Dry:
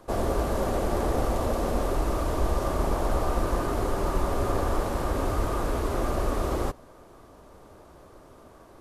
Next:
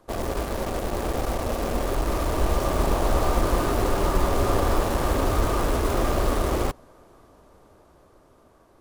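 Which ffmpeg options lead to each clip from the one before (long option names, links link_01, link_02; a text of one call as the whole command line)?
ffmpeg -i in.wav -filter_complex "[0:a]dynaudnorm=framelen=390:gausssize=11:maxgain=6dB,asplit=2[link_01][link_02];[link_02]acrusher=bits=3:mix=0:aa=0.000001,volume=-5.5dB[link_03];[link_01][link_03]amix=inputs=2:normalize=0,volume=-5.5dB" out.wav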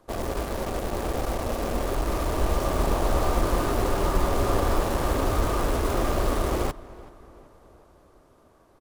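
ffmpeg -i in.wav -filter_complex "[0:a]asplit=2[link_01][link_02];[link_02]adelay=379,lowpass=frequency=2900:poles=1,volume=-19.5dB,asplit=2[link_03][link_04];[link_04]adelay=379,lowpass=frequency=2900:poles=1,volume=0.5,asplit=2[link_05][link_06];[link_06]adelay=379,lowpass=frequency=2900:poles=1,volume=0.5,asplit=2[link_07][link_08];[link_08]adelay=379,lowpass=frequency=2900:poles=1,volume=0.5[link_09];[link_01][link_03][link_05][link_07][link_09]amix=inputs=5:normalize=0,volume=-1.5dB" out.wav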